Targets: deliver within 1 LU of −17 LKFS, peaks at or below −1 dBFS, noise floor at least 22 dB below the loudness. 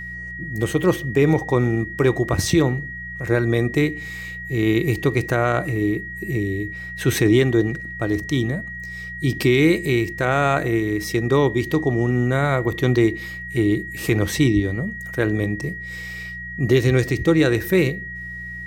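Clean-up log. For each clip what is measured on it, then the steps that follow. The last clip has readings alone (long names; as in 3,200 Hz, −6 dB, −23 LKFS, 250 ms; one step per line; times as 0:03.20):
mains hum 60 Hz; hum harmonics up to 180 Hz; level of the hum −38 dBFS; interfering tone 1,900 Hz; level of the tone −31 dBFS; integrated loudness −21.0 LKFS; sample peak −5.5 dBFS; target loudness −17.0 LKFS
→ hum removal 60 Hz, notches 3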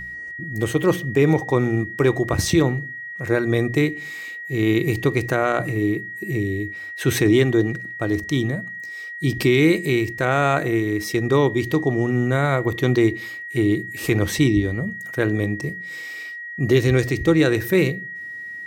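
mains hum none found; interfering tone 1,900 Hz; level of the tone −31 dBFS
→ notch filter 1,900 Hz, Q 30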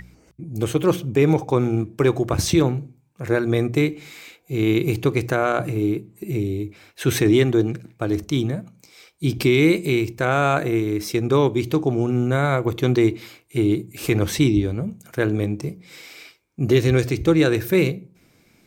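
interfering tone none found; integrated loudness −21.0 LKFS; sample peak −5.5 dBFS; target loudness −17.0 LKFS
→ level +4 dB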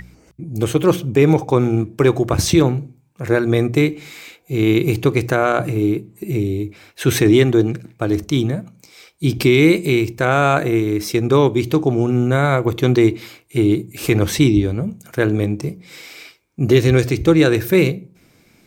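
integrated loudness −17.0 LKFS; sample peak −1.5 dBFS; background noise floor −54 dBFS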